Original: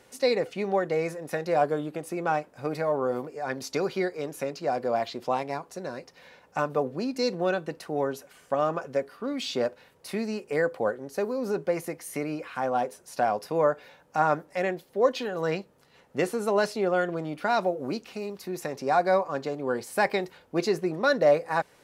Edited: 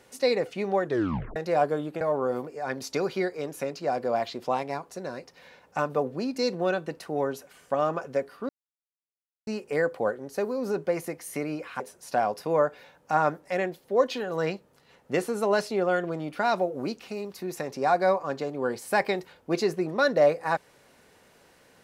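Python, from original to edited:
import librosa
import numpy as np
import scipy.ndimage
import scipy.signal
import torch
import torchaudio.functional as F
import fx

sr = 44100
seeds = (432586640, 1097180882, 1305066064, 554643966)

y = fx.edit(x, sr, fx.tape_stop(start_s=0.85, length_s=0.51),
    fx.cut(start_s=2.01, length_s=0.8),
    fx.silence(start_s=9.29, length_s=0.98),
    fx.cut(start_s=12.6, length_s=0.25), tone=tone)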